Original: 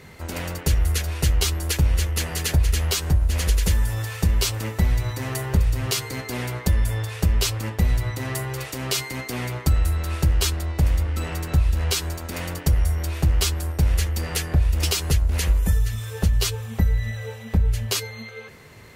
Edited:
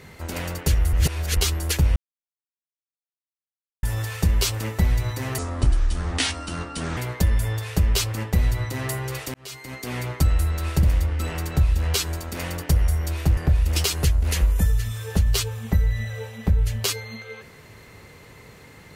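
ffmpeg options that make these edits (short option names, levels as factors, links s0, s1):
-filter_complex "[0:a]asplit=10[s0][s1][s2][s3][s4][s5][s6][s7][s8][s9];[s0]atrim=end=0.932[s10];[s1]atrim=start=0.928:end=1.372,asetpts=PTS-STARTPTS,areverse[s11];[s2]atrim=start=1.368:end=1.96,asetpts=PTS-STARTPTS,afade=t=out:st=0.588:d=0.004:c=hsin[s12];[s3]atrim=start=1.96:end=3.83,asetpts=PTS-STARTPTS,volume=0[s13];[s4]atrim=start=3.83:end=5.384,asetpts=PTS-STARTPTS,afade=t=in:d=0.004:c=hsin[s14];[s5]atrim=start=5.38:end=6.43,asetpts=PTS-STARTPTS,asetrate=29106,aresample=44100,atrim=end_sample=70159,asetpts=PTS-STARTPTS[s15];[s6]atrim=start=6.426:end=8.8,asetpts=PTS-STARTPTS,afade=t=out:st=2.37:d=0.004:c=hsin[s16];[s7]atrim=start=8.8:end=10.292,asetpts=PTS-STARTPTS,afade=t=in:d=0.7[s17];[s8]atrim=start=10.798:end=13.342[s18];[s9]atrim=start=14.438[s19];[s10][s11]acrossfade=d=0.004:c1=hsin:c2=hsin[s20];[s12][s13][s14]concat=n=3:v=0:a=1[s21];[s20][s21]acrossfade=d=0.004:c1=hsin:c2=hsin[s22];[s22][s15]acrossfade=d=0.004:c1=hsin:c2=hsin[s23];[s16][s17]concat=n=2:v=0:a=1[s24];[s23][s24]acrossfade=d=0.004:c1=hsin:c2=hsin[s25];[s25][s18]acrossfade=d=0.004:c1=hsin:c2=hsin[s26];[s26][s19]acrossfade=d=0.004:c1=hsin:c2=hsin"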